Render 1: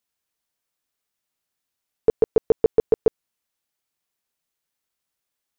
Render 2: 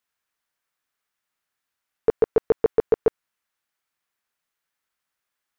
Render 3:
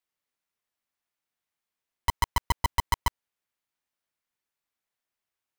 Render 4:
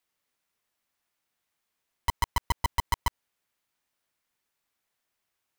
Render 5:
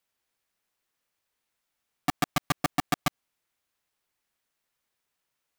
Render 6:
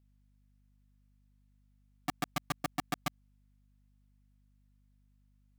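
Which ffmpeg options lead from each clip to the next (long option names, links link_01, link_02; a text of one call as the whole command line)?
ffmpeg -i in.wav -af "equalizer=frequency=1500:width=0.8:gain=9.5,volume=-3dB" out.wav
ffmpeg -i in.wav -af "aeval=exprs='val(0)*sgn(sin(2*PI*510*n/s))':channel_layout=same,volume=-6.5dB" out.wav
ffmpeg -i in.wav -af "alimiter=level_in=0.5dB:limit=-24dB:level=0:latency=1:release=58,volume=-0.5dB,volume=6.5dB" out.wav
ffmpeg -i in.wav -af "aeval=exprs='val(0)*sgn(sin(2*PI*220*n/s))':channel_layout=same" out.wav
ffmpeg -i in.wav -af "aeval=exprs='val(0)+0.00126*(sin(2*PI*50*n/s)+sin(2*PI*2*50*n/s)/2+sin(2*PI*3*50*n/s)/3+sin(2*PI*4*50*n/s)/4+sin(2*PI*5*50*n/s)/5)':channel_layout=same,volume=-8.5dB" out.wav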